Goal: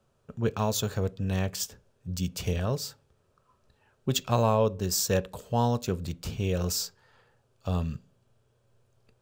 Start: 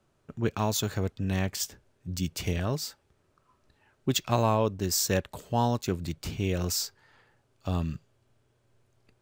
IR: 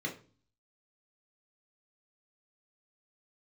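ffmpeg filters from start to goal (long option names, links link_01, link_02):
-filter_complex "[0:a]equalizer=frequency=315:width_type=o:width=0.33:gain=-9,equalizer=frequency=500:width_type=o:width=0.33:gain=6,equalizer=frequency=2000:width_type=o:width=0.33:gain=-6,asplit=2[link_01][link_02];[1:a]atrim=start_sample=2205[link_03];[link_02][link_03]afir=irnorm=-1:irlink=0,volume=-18.5dB[link_04];[link_01][link_04]amix=inputs=2:normalize=0"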